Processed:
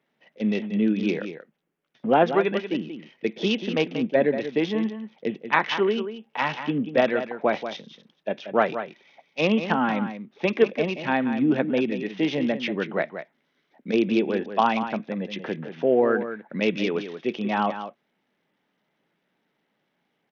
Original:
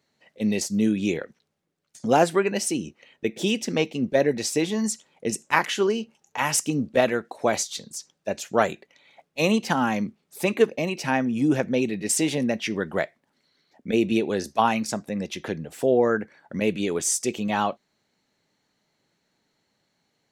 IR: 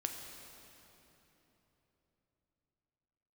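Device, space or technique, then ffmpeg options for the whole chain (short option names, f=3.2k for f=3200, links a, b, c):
Bluetooth headset: -filter_complex "[0:a]asettb=1/sr,asplit=3[a][b][c];[a]atrim=end=16.554[d];[b]atrim=start=16.55:end=16.95,asetpts=PTS-STARTPTS,afade=t=in:d=0.004:c=qsin,afade=t=out:st=0.396:d=0.004:c=qsin,equalizer=f=2.7k:t=o:w=1.8:g=3.5[e];[c]atrim=start=16.946[f];[d][e]acrossfade=d=0.004:c1=hsin:c2=qsin[g];[g][f]acrossfade=d=0.004:c1=qsin:c2=hsin,highpass=f=150:w=0.5412,highpass=f=150:w=1.3066,aecho=1:1:184:0.316,aresample=8000,aresample=44100" -ar 48000 -c:a sbc -b:a 64k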